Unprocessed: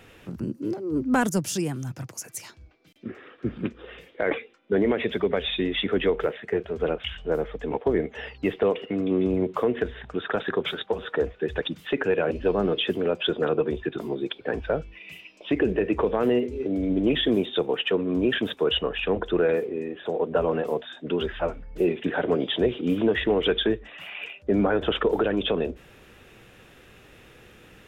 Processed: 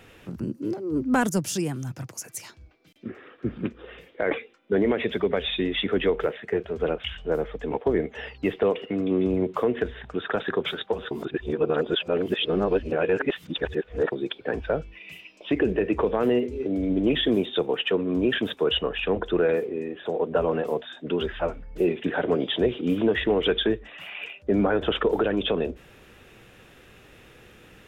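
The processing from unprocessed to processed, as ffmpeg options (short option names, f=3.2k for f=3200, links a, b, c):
-filter_complex "[0:a]asettb=1/sr,asplit=3[a][b][c];[a]atrim=end=3.094[d];[b]atrim=start=3.09:end=4.31,asetpts=PTS-STARTPTS,afade=t=in:d=0.004:c=qsin,afade=t=out:st=1.216:d=0.004:c=qsin,equalizer=f=6.6k:w=0.47:g=-3.5[e];[c]atrim=start=4.306[f];[d][e]acrossfade=d=0.004:c1=hsin:c2=qsin[g];[g][f]acrossfade=d=0.004:c1=qsin:c2=hsin,asplit=3[h][i][j];[h]atrim=end=11.112[k];[i]atrim=start=11.108:end=14.122,asetpts=PTS-STARTPTS,areverse[l];[j]atrim=start=14.118[m];[k][l]acrossfade=d=0.004:c1=hsin:c2=hsin[n];[n][m]acrossfade=d=0.004:c1=hsin:c2=hsin"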